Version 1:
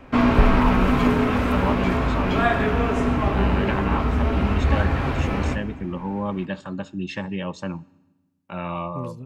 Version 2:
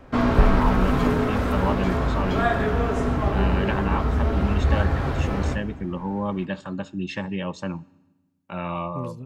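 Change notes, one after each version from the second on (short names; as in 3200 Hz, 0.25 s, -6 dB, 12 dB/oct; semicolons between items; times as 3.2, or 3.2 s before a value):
background: add fifteen-band EQ 250 Hz -4 dB, 1000 Hz -3 dB, 2500 Hz -8 dB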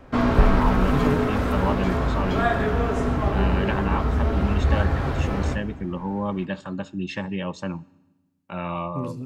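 second voice: send on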